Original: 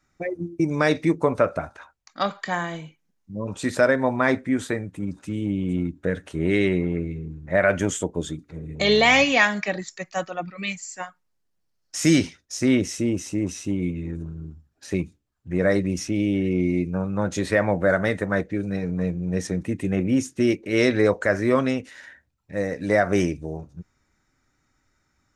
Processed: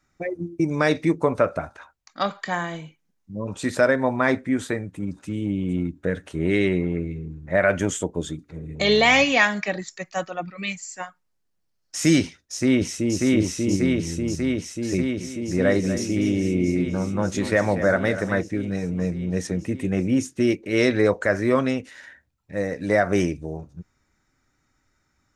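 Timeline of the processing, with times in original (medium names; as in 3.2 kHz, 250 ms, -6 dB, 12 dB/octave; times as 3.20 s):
12.22–13.17 s: echo throw 590 ms, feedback 80%, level -1 dB
14.96–18.40 s: delay 242 ms -11.5 dB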